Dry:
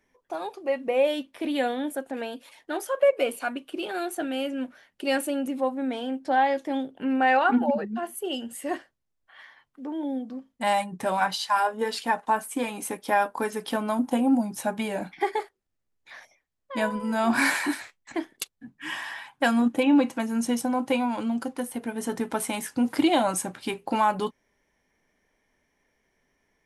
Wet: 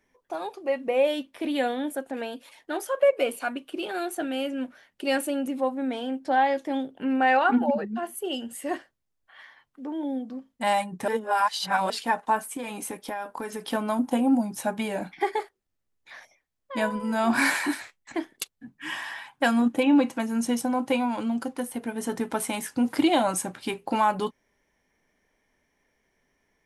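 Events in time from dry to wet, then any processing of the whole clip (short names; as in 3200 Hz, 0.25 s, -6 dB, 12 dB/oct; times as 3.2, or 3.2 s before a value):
11.08–11.9 reverse
12.55–13.7 compressor, threshold -29 dBFS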